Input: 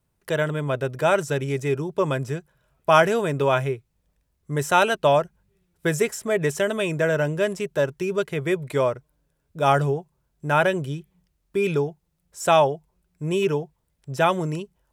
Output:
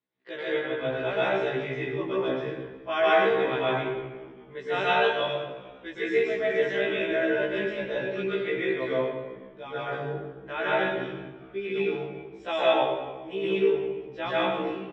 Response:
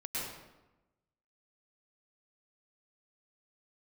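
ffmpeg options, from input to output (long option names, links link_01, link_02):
-filter_complex "[0:a]asettb=1/sr,asplit=3[link_01][link_02][link_03];[link_01]atrim=end=5.074[link_04];[link_02]atrim=start=5.07:end=5.97,asetpts=PTS-STARTPTS,afade=type=in:duration=0.004:curve=qsin,afade=type=out:start_time=0.896:duration=0.004:curve=qsin,equalizer=frequency=800:width=0.81:gain=-14[link_05];[link_03]atrim=start=5.966[link_06];[link_04][link_05]acrossfade=duration=0.004:curve1=hsin:curve2=qsin[link_07];[link_07][link_06]acrossfade=duration=0.004:curve1=qsin:curve2=hsin,asettb=1/sr,asplit=3[link_08][link_09][link_10];[link_08]atrim=end=8.844[link_11];[link_09]atrim=start=8.84:end=9.76,asetpts=PTS-STARTPTS,afade=type=in:duration=0.004:curve=qsin,afade=type=out:start_time=0.916:duration=0.004:curve=qsin,acompressor=threshold=-25dB:ratio=6[link_12];[link_10]atrim=start=9.756[link_13];[link_11][link_12]acrossfade=duration=0.004:curve1=hsin:curve2=qsin[link_14];[link_14][link_13]acrossfade=duration=0.004:curve1=qsin:curve2=hsin,highpass=280,equalizer=frequency=310:width_type=q:width=4:gain=3,equalizer=frequency=610:width_type=q:width=4:gain=-4,equalizer=frequency=920:width_type=q:width=4:gain=-5,equalizer=frequency=1300:width_type=q:width=4:gain=-4,equalizer=frequency=2000:width_type=q:width=4:gain=5,equalizer=frequency=3500:width_type=q:width=4:gain=6,lowpass=frequency=3700:width=0.5412,lowpass=frequency=3700:width=1.3066,asplit=4[link_15][link_16][link_17][link_18];[link_16]adelay=370,afreqshift=-86,volume=-23dB[link_19];[link_17]adelay=740,afreqshift=-172,volume=-29.6dB[link_20];[link_18]adelay=1110,afreqshift=-258,volume=-36.1dB[link_21];[link_15][link_19][link_20][link_21]amix=inputs=4:normalize=0[link_22];[1:a]atrim=start_sample=2205,asetrate=38367,aresample=44100[link_23];[link_22][link_23]afir=irnorm=-1:irlink=0,afftfilt=real='re*1.73*eq(mod(b,3),0)':imag='im*1.73*eq(mod(b,3),0)':win_size=2048:overlap=0.75,volume=-3.5dB"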